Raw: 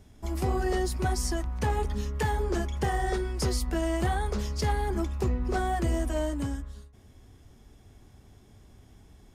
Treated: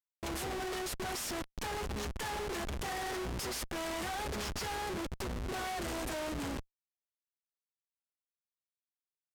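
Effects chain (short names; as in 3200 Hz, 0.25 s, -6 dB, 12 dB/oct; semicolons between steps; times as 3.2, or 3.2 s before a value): RIAA curve recording; in parallel at +0.5 dB: compressor 6:1, threshold -40 dBFS, peak gain reduction 18 dB; on the sum: Schmitt trigger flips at -32.5 dBFS; decimation joined by straight lines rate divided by 2×; gain -6 dB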